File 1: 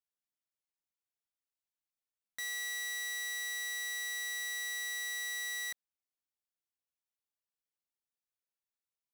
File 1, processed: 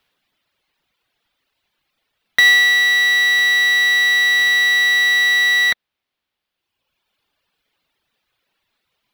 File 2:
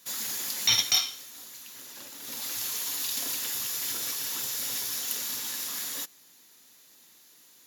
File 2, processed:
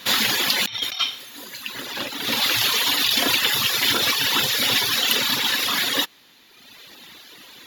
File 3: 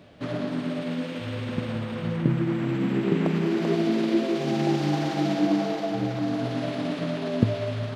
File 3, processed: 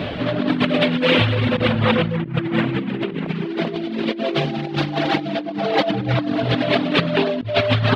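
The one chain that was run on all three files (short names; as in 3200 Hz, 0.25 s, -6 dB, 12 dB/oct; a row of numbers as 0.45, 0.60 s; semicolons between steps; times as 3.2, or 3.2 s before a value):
reverb removal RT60 1.5 s; resonant high shelf 5000 Hz -12.5 dB, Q 1.5; negative-ratio compressor -39 dBFS, ratio -1; normalise peaks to -3 dBFS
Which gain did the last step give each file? +29.5, +18.0, +17.5 dB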